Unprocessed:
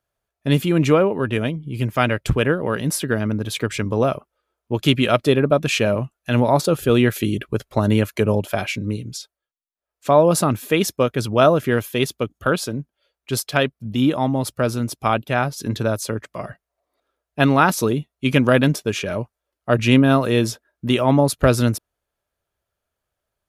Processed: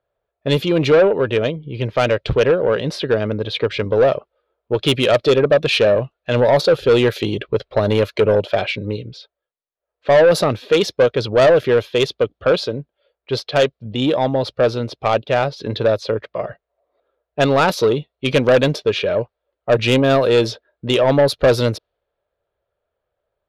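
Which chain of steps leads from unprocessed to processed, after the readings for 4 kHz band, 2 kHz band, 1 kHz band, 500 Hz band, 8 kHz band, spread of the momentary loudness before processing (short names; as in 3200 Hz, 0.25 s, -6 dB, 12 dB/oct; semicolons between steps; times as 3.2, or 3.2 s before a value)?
+4.0 dB, +1.0 dB, 0.0 dB, +5.5 dB, -6.5 dB, 11 LU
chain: low-pass opened by the level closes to 1900 Hz, open at -11 dBFS; ten-band EQ 250 Hz -5 dB, 500 Hz +12 dB, 4000 Hz +12 dB, 8000 Hz -11 dB; soft clip -7.5 dBFS, distortion -11 dB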